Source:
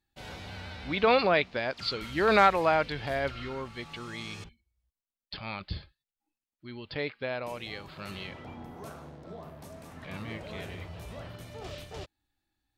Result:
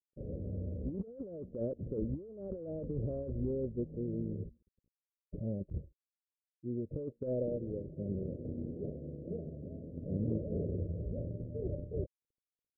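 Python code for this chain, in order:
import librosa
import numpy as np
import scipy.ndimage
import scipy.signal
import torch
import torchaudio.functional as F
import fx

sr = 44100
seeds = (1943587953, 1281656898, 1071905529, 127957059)

y = fx.law_mismatch(x, sr, coded='A')
y = scipy.signal.sosfilt(scipy.signal.butter(12, 560.0, 'lowpass', fs=sr, output='sos'), y)
y = fx.over_compress(y, sr, threshold_db=-42.0, ratio=-1.0)
y = F.gain(torch.from_numpy(y), 4.5).numpy()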